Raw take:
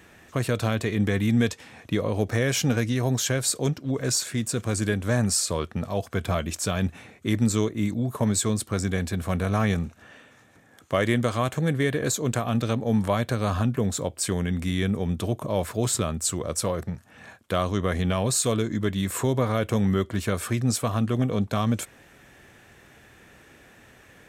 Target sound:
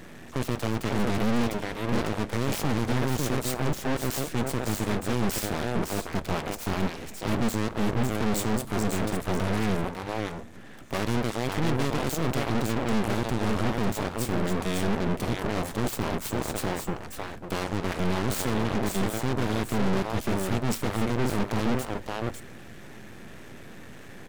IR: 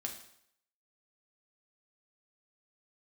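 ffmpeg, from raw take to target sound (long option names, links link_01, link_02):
-filter_complex "[0:a]equalizer=frequency=200:width_type=o:width=2.2:gain=10,aeval=exprs='max(val(0),0)':channel_layout=same,aecho=1:1:550:0.422,asoftclip=type=tanh:threshold=-23dB,aeval=exprs='0.0708*(cos(1*acos(clip(val(0)/0.0708,-1,1)))-cos(1*PI/2))+0.0316*(cos(4*acos(clip(val(0)/0.0708,-1,1)))-cos(4*PI/2))+0.01*(cos(5*acos(clip(val(0)/0.0708,-1,1)))-cos(5*PI/2))':channel_layout=same,asplit=2[link_01][link_02];[1:a]atrim=start_sample=2205[link_03];[link_02][link_03]afir=irnorm=-1:irlink=0,volume=-14dB[link_04];[link_01][link_04]amix=inputs=2:normalize=0,volume=2.5dB"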